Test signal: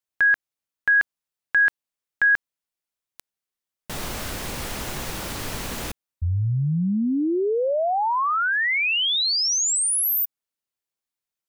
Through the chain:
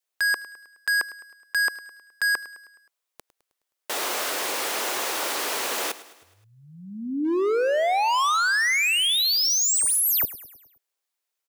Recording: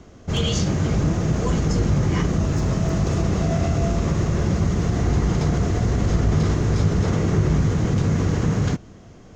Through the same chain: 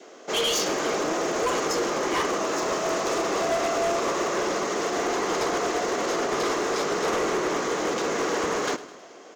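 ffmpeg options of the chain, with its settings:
ffmpeg -i in.wav -filter_complex "[0:a]highpass=frequency=370:width=0.5412,highpass=frequency=370:width=1.3066,adynamicequalizer=threshold=0.01:dfrequency=1100:dqfactor=3.2:tfrequency=1100:tqfactor=3.2:attack=5:release=100:ratio=0.375:range=3:mode=boostabove:tftype=bell,volume=26.5dB,asoftclip=hard,volume=-26.5dB,asplit=2[link_01][link_02];[link_02]aecho=0:1:105|210|315|420|525:0.141|0.0749|0.0397|0.021|0.0111[link_03];[link_01][link_03]amix=inputs=2:normalize=0,volume=5.5dB" out.wav

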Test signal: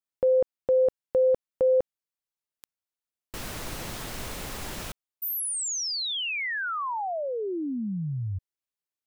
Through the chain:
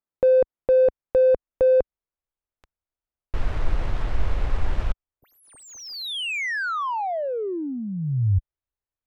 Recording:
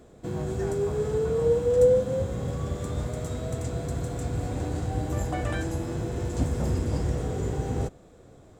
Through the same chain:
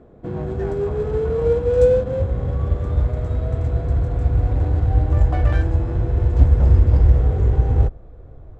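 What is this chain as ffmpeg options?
ffmpeg -i in.wav -af "asubboost=boost=8.5:cutoff=68,adynamicsmooth=sensitivity=3:basefreq=1600,volume=5dB" out.wav

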